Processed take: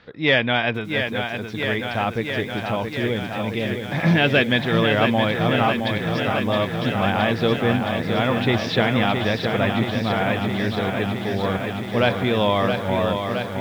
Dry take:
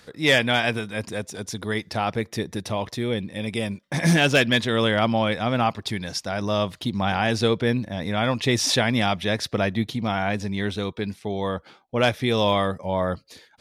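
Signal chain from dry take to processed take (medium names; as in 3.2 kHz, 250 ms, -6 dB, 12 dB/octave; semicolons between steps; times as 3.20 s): low-pass 3.6 kHz 24 dB/octave; bit-crushed delay 668 ms, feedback 80%, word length 8-bit, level -6 dB; trim +1 dB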